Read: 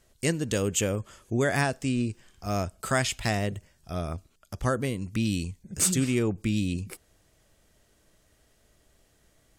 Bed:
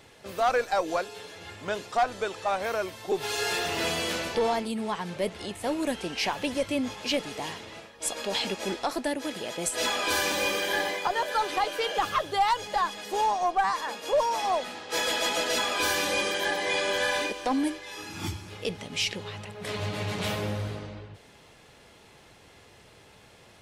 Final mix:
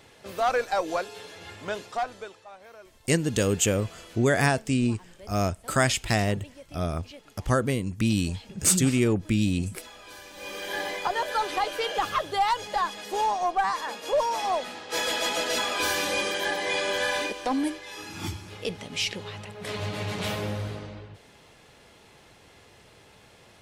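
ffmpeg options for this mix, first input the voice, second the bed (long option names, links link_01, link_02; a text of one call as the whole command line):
ffmpeg -i stem1.wav -i stem2.wav -filter_complex "[0:a]adelay=2850,volume=3dB[link_01];[1:a]volume=19dB,afade=type=out:start_time=1.63:duration=0.83:silence=0.112202,afade=type=in:start_time=10.33:duration=0.74:silence=0.112202[link_02];[link_01][link_02]amix=inputs=2:normalize=0" out.wav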